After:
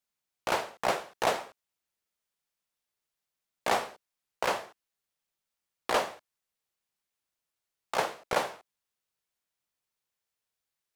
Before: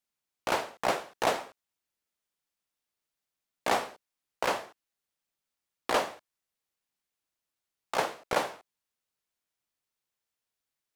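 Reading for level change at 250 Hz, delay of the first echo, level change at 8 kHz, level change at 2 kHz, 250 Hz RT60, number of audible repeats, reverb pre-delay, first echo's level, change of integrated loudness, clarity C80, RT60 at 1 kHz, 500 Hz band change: -2.0 dB, none, 0.0 dB, 0.0 dB, none, none, none, none, 0.0 dB, none, none, 0.0 dB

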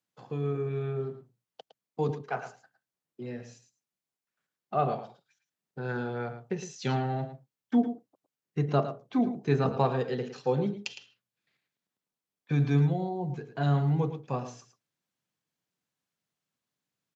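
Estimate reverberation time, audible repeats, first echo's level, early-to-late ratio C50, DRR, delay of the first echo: none, 1, -11.0 dB, none, none, 0.11 s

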